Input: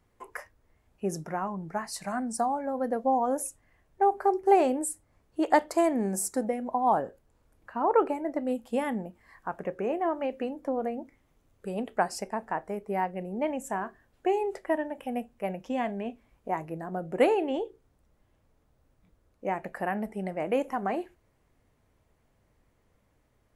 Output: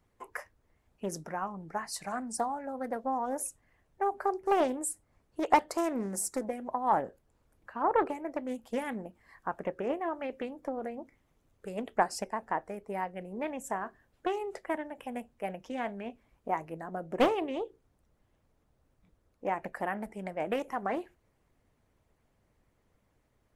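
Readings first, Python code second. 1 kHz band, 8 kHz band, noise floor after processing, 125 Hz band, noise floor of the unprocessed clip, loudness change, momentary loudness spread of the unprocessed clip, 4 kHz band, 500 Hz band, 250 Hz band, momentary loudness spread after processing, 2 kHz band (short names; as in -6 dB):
-3.0 dB, -1.5 dB, -73 dBFS, -6.0 dB, -69 dBFS, -4.0 dB, 13 LU, 0.0 dB, -5.0 dB, -5.0 dB, 13 LU, -2.0 dB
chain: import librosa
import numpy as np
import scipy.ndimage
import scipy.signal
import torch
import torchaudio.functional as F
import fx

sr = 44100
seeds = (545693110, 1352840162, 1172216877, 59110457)

y = fx.hpss(x, sr, part='harmonic', gain_db=-7)
y = fx.doppler_dist(y, sr, depth_ms=0.38)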